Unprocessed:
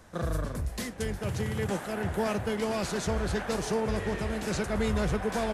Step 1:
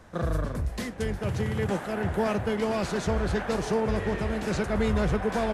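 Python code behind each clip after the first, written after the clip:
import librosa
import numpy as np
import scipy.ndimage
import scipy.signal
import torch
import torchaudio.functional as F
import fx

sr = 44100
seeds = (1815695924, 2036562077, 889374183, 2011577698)

y = fx.high_shelf(x, sr, hz=4800.0, db=-9.0)
y = y * librosa.db_to_amplitude(3.0)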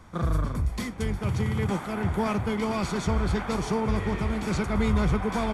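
y = x + 0.46 * np.pad(x, (int(0.9 * sr / 1000.0), 0))[:len(x)]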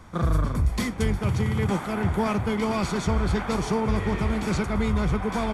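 y = fx.rider(x, sr, range_db=10, speed_s=0.5)
y = y * librosa.db_to_amplitude(2.0)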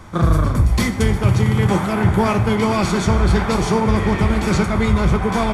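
y = fx.rev_fdn(x, sr, rt60_s=0.71, lf_ratio=1.25, hf_ratio=0.95, size_ms=52.0, drr_db=7.5)
y = y * librosa.db_to_amplitude(7.5)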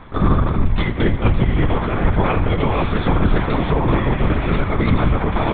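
y = fx.lpc_vocoder(x, sr, seeds[0], excitation='whisper', order=10)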